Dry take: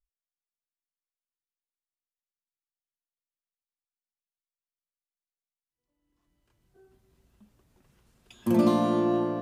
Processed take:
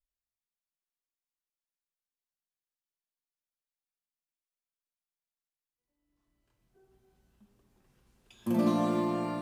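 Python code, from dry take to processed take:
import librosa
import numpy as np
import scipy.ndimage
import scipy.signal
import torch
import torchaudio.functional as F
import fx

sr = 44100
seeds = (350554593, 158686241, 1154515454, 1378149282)

y = fx.rev_shimmer(x, sr, seeds[0], rt60_s=1.1, semitones=12, shimmer_db=-8, drr_db=3.5)
y = y * 10.0 ** (-6.0 / 20.0)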